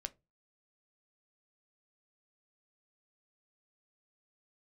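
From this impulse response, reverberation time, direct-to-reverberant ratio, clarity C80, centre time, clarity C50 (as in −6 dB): 0.25 s, 10.0 dB, 33.0 dB, 3 ms, 24.0 dB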